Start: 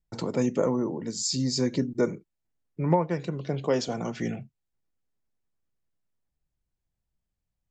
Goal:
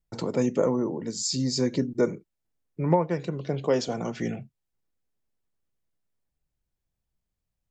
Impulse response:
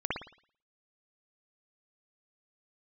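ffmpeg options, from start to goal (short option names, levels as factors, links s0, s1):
-af "equalizer=f=470:w=1.5:g=2"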